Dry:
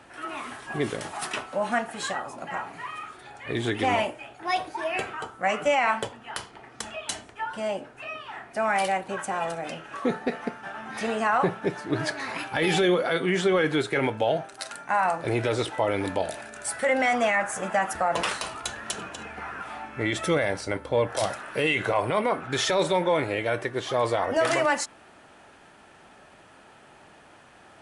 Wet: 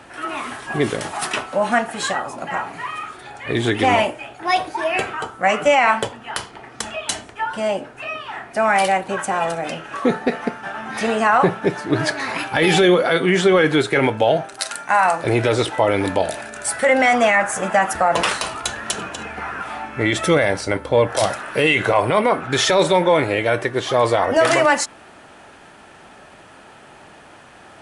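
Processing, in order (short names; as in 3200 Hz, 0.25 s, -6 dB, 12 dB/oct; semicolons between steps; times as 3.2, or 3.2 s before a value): 14.59–15.24 tilt +1.5 dB/oct; gain +8 dB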